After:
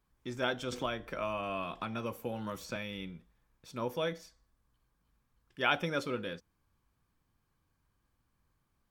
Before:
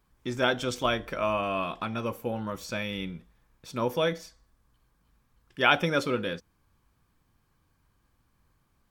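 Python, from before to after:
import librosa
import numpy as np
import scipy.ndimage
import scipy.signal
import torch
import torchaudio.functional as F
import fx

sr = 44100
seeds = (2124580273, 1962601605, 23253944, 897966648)

y = fx.band_squash(x, sr, depth_pct=70, at=(0.72, 2.76))
y = F.gain(torch.from_numpy(y), -7.5).numpy()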